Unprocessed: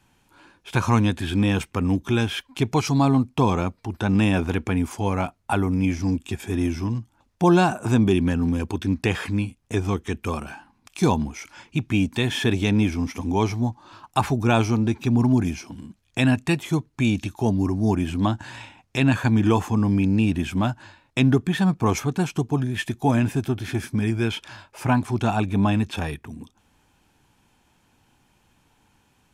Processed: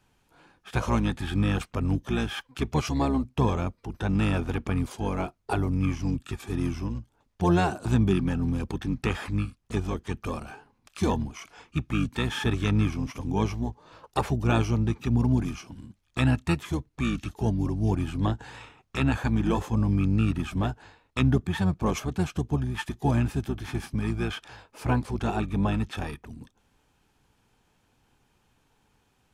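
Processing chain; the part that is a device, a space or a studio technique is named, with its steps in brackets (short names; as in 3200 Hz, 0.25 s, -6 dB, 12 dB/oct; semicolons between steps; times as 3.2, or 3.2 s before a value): octave pedal (harmoniser -12 st -3 dB); gain -6.5 dB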